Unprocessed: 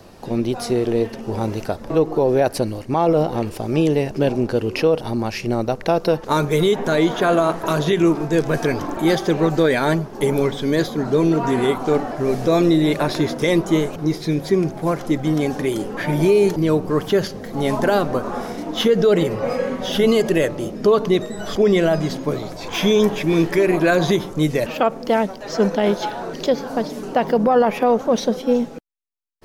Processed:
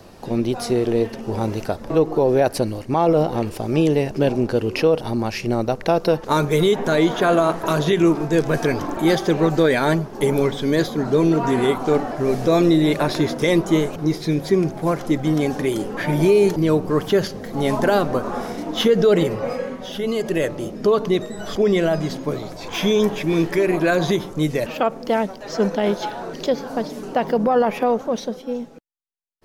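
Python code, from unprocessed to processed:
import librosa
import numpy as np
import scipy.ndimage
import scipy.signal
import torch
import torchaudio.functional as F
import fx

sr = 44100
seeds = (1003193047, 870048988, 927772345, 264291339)

y = fx.gain(x, sr, db=fx.line((19.26, 0.0), (19.99, -9.0), (20.47, -2.0), (27.84, -2.0), (28.46, -9.0)))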